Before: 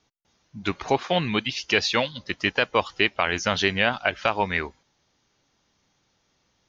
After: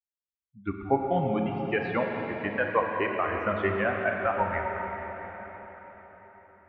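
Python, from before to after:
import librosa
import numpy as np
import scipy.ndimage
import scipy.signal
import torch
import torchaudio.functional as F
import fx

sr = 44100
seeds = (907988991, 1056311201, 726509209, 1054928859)

y = fx.bin_expand(x, sr, power=2.0)
y = scipy.signal.sosfilt(scipy.signal.butter(4, 1800.0, 'lowpass', fs=sr, output='sos'), y)
y = fx.rev_plate(y, sr, seeds[0], rt60_s=4.8, hf_ratio=0.9, predelay_ms=0, drr_db=0.5)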